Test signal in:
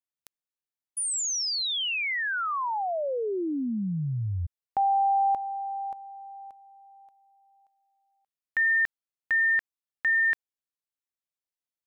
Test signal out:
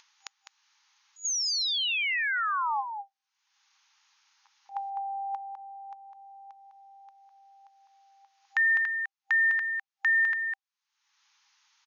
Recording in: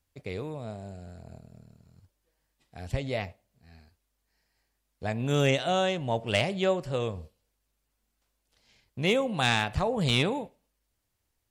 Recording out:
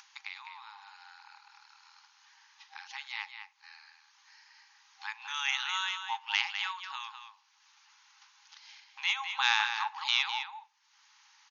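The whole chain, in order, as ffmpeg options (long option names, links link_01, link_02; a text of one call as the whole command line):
ffmpeg -i in.wav -filter_complex "[0:a]afftfilt=real='re*between(b*sr/4096,790,6800)':imag='im*between(b*sr/4096,790,6800)':win_size=4096:overlap=0.75,acompressor=mode=upward:threshold=-46dB:ratio=2.5:attack=66:release=373:knee=2.83:detection=peak,asplit=2[link_01][link_02];[link_02]adelay=204.1,volume=-7dB,highshelf=frequency=4000:gain=-4.59[link_03];[link_01][link_03]amix=inputs=2:normalize=0" out.wav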